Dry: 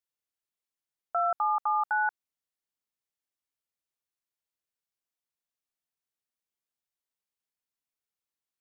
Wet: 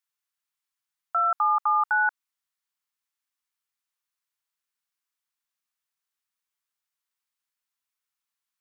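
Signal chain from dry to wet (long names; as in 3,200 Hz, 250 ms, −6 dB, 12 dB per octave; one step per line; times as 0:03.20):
low shelf with overshoot 770 Hz −10.5 dB, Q 1.5
level +4 dB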